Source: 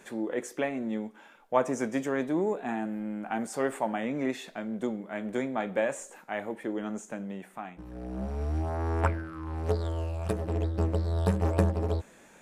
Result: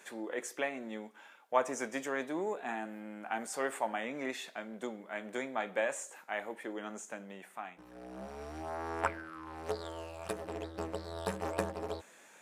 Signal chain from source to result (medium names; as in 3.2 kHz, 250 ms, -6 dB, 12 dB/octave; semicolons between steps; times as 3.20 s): high-pass 860 Hz 6 dB/octave